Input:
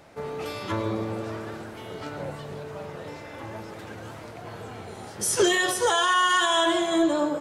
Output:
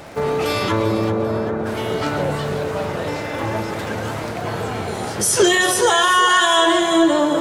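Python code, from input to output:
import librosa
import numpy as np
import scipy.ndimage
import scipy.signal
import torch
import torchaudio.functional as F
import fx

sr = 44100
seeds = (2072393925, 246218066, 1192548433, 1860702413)

p1 = fx.over_compress(x, sr, threshold_db=-34.0, ratio=-1.0)
p2 = x + (p1 * 10.0 ** (-2.0 / 20.0))
p3 = fx.dmg_crackle(p2, sr, seeds[0], per_s=88.0, level_db=-40.0)
p4 = fx.gaussian_blur(p3, sr, sigma=5.4, at=(1.09, 1.65), fade=0.02)
p5 = fx.echo_feedback(p4, sr, ms=394, feedback_pct=45, wet_db=-11.5)
y = p5 * 10.0 ** (6.0 / 20.0)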